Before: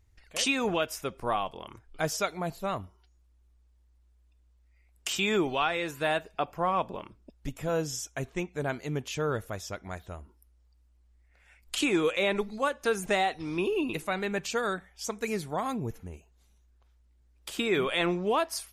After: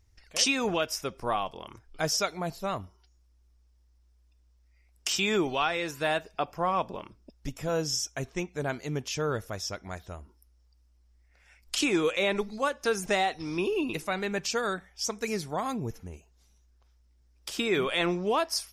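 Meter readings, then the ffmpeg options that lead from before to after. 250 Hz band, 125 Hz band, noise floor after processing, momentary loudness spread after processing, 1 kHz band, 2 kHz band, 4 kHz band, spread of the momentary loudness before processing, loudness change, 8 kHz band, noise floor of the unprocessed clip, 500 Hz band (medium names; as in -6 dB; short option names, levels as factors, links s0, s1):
0.0 dB, 0.0 dB, -64 dBFS, 12 LU, 0.0 dB, 0.0 dB, +3.0 dB, 12 LU, +0.5 dB, +4.0 dB, -64 dBFS, 0.0 dB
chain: -af "equalizer=f=5400:t=o:w=0.39:g=10"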